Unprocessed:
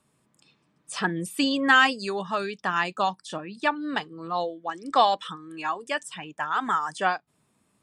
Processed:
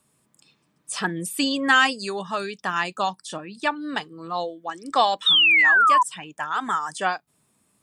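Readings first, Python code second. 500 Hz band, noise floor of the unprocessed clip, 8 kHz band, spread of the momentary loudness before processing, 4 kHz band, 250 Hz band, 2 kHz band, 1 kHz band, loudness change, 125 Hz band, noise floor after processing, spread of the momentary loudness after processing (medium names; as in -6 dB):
0.0 dB, -70 dBFS, +6.5 dB, 14 LU, +9.0 dB, 0.0 dB, +5.5 dB, +2.5 dB, +5.0 dB, 0.0 dB, -69 dBFS, 18 LU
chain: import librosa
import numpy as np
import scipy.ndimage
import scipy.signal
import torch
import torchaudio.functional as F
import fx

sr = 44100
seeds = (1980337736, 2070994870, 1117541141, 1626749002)

y = fx.high_shelf(x, sr, hz=6600.0, db=10.5)
y = fx.spec_paint(y, sr, seeds[0], shape='fall', start_s=5.26, length_s=0.77, low_hz=960.0, high_hz=3800.0, level_db=-16.0)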